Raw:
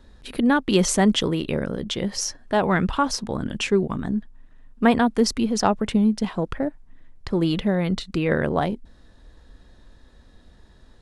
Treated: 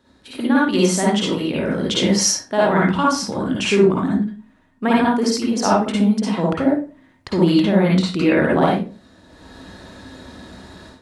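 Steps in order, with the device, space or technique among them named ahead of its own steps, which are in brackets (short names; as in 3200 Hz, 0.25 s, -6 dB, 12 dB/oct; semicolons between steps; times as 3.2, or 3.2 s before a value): far laptop microphone (reverb RT60 0.35 s, pre-delay 49 ms, DRR -5 dB; HPF 130 Hz 12 dB/oct; AGC gain up to 16 dB); gain -3.5 dB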